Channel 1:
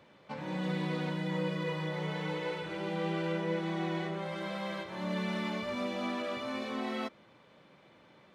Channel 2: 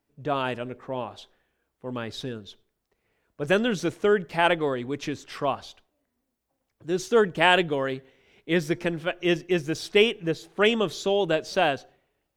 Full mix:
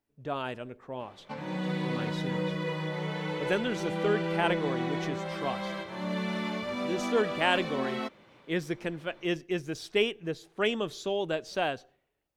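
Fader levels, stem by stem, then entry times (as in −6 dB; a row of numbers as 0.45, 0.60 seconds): +2.0, −7.0 decibels; 1.00, 0.00 seconds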